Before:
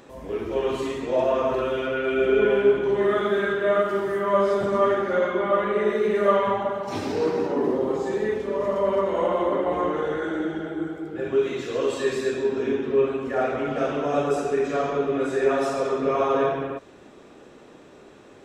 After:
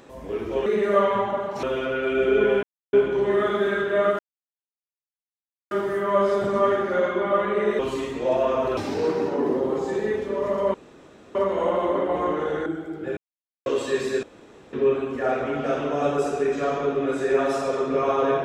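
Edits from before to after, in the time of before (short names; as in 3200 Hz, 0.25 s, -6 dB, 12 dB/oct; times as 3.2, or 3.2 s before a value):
0.66–1.64 swap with 5.98–6.95
2.64 insert silence 0.30 s
3.9 insert silence 1.52 s
8.92 insert room tone 0.61 s
10.23–10.78 cut
11.29–11.78 mute
12.35–12.85 room tone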